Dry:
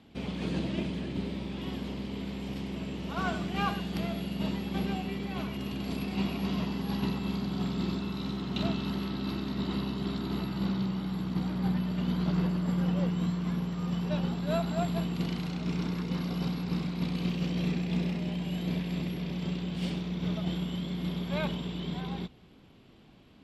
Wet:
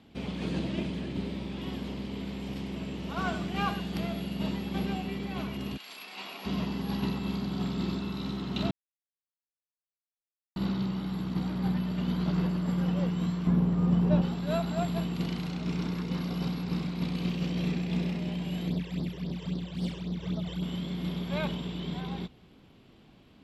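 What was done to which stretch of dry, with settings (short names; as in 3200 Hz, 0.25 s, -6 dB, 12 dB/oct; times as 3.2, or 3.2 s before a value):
5.76–6.45 HPF 1500 Hz -> 610 Hz
8.71–10.56 mute
13.47–14.22 tilt shelf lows +7.5 dB, about 1500 Hz
18.68–20.63 phaser stages 12, 3.7 Hz, lowest notch 220–2600 Hz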